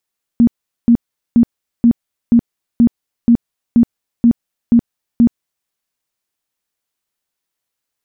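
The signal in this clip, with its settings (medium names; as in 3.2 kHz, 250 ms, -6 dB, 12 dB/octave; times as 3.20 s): tone bursts 235 Hz, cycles 17, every 0.48 s, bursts 11, -5 dBFS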